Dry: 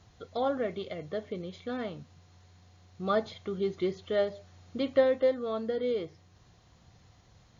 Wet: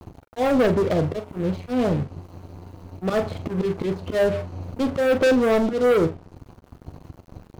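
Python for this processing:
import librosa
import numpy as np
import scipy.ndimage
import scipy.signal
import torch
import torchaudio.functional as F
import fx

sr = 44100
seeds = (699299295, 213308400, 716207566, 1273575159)

p1 = fx.wiener(x, sr, points=25)
p2 = fx.low_shelf(p1, sr, hz=240.0, db=4.0)
p3 = fx.auto_swell(p2, sr, attack_ms=258.0)
p4 = fx.high_shelf(p3, sr, hz=4500.0, db=7.5)
p5 = np.where(np.abs(p4) >= 10.0 ** (-54.5 / 20.0), p4, 0.0)
p6 = fx.env_lowpass_down(p5, sr, base_hz=1400.0, full_db=-31.5)
p7 = fx.leveller(p6, sr, passes=5)
p8 = p7 + fx.room_early_taps(p7, sr, ms=(12, 43), db=(-13.0, -11.0), dry=0)
y = F.gain(torch.from_numpy(p8), 1.5).numpy()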